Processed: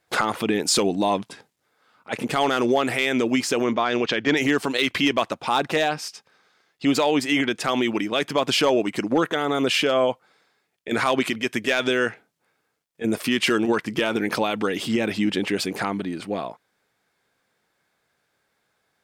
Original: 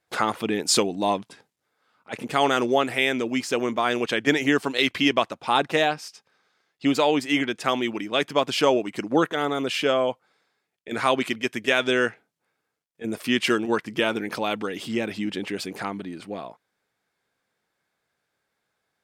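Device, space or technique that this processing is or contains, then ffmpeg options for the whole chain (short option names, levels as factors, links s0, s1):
clipper into limiter: -filter_complex "[0:a]asoftclip=type=hard:threshold=0.299,alimiter=limit=0.141:level=0:latency=1:release=53,asettb=1/sr,asplit=3[s0][s1][s2];[s0]atrim=end=3.644[s3];[s1]atrim=start=3.64:end=4.37,asetpts=PTS-STARTPTS,afade=t=in:d=0.004:c=qsin,afade=t=out:st=0.726:d=0.004:c=qsin,lowpass=f=5900:w=0.5412,lowpass=f=5900:w=1.3066[s4];[s2]atrim=start=4.366[s5];[s3][s4]acrossfade=d=0.004:c1=hsin:c2=qsin[s6];[s6][s5]acrossfade=d=0.004:c1=qsin:c2=hsin,volume=2"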